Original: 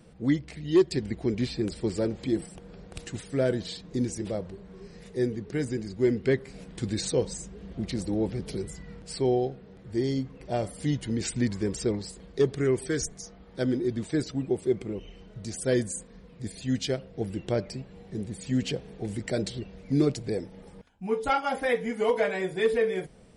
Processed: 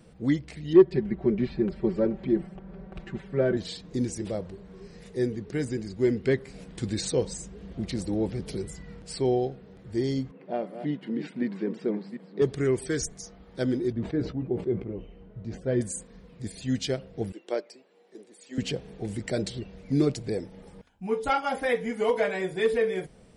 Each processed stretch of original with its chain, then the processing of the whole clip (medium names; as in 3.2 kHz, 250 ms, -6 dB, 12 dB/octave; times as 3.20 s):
0.73–3.57 s: low-pass 1.8 kHz + comb 5.2 ms, depth 85%
10.31–12.42 s: chunks repeated in reverse 372 ms, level -10 dB + brick-wall FIR high-pass 150 Hz + distance through air 420 m
13.92–15.81 s: tape spacing loss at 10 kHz 41 dB + doubling 17 ms -9 dB + decay stretcher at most 130 dB/s
17.32–18.58 s: high-pass 320 Hz 24 dB/octave + upward expansion, over -42 dBFS
whole clip: none